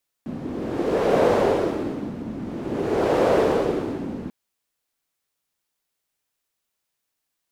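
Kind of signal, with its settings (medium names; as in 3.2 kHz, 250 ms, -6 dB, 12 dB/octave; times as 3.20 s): wind-like swept noise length 4.04 s, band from 240 Hz, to 510 Hz, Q 2.5, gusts 2, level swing 14 dB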